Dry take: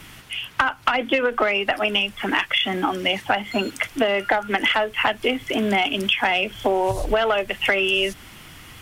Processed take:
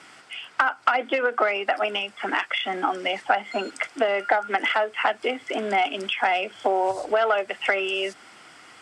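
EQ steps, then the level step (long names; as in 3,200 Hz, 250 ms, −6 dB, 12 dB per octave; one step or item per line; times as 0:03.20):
loudspeaker in its box 400–9,300 Hz, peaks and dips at 740 Hz +5 dB, 1,400 Hz +8 dB, 2,100 Hz +4 dB, 4,900 Hz +9 dB, 8,000 Hz +9 dB
tilt shelving filter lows +5 dB, about 1,100 Hz
−5.0 dB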